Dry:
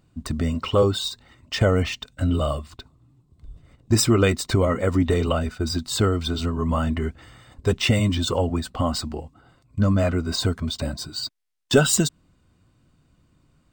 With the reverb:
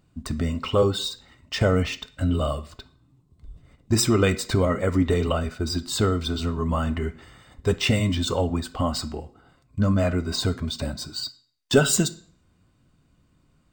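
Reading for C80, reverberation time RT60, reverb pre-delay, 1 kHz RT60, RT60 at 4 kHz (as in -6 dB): 21.0 dB, 0.55 s, 3 ms, 0.55 s, 0.45 s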